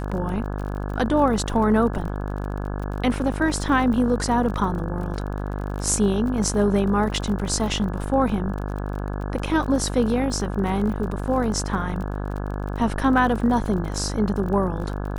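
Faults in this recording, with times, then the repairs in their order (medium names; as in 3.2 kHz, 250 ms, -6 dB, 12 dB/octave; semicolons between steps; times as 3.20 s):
buzz 50 Hz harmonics 34 -28 dBFS
crackle 35 per s -31 dBFS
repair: de-click; de-hum 50 Hz, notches 34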